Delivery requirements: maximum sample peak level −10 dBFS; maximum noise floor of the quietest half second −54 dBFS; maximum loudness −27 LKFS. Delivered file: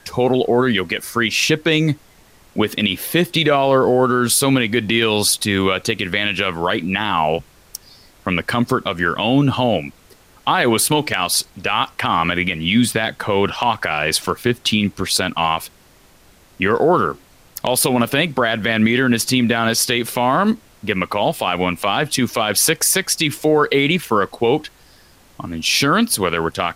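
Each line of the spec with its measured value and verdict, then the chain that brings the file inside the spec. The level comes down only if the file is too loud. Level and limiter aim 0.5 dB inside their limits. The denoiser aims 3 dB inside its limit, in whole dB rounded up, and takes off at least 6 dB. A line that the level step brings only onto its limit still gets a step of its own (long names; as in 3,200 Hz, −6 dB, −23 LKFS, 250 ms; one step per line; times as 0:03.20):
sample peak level −5.0 dBFS: out of spec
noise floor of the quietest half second −50 dBFS: out of spec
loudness −17.5 LKFS: out of spec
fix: level −10 dB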